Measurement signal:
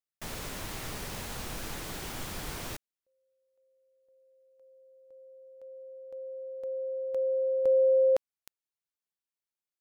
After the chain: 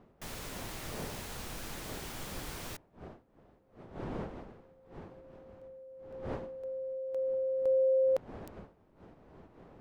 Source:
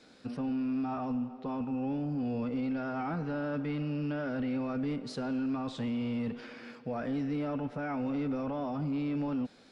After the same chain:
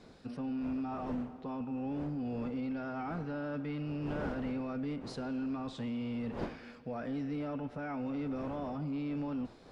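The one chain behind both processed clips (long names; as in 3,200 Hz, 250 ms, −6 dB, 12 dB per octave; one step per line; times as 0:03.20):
wind on the microphone 510 Hz −45 dBFS
level −4 dB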